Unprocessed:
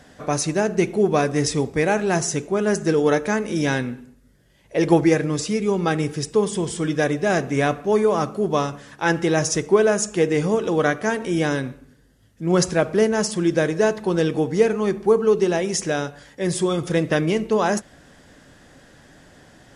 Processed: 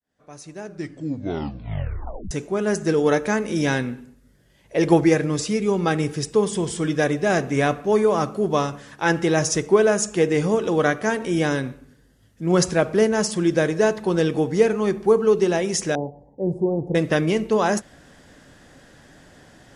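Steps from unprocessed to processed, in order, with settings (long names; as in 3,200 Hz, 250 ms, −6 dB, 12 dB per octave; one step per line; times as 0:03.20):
fade in at the beginning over 3.25 s
0:00.62: tape stop 1.69 s
0:15.95–0:16.95: elliptic low-pass filter 860 Hz, stop band 40 dB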